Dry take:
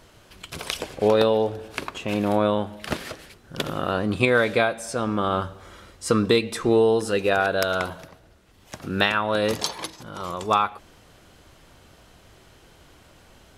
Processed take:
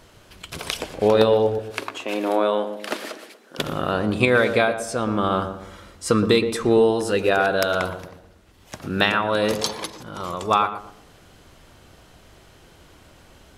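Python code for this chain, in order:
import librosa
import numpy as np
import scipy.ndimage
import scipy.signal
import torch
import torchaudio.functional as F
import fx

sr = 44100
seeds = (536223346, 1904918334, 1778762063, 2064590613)

y = fx.highpass(x, sr, hz=280.0, slope=24, at=(1.59, 3.59))
y = fx.echo_filtered(y, sr, ms=119, feedback_pct=42, hz=830.0, wet_db=-7.5)
y = F.gain(torch.from_numpy(y), 1.5).numpy()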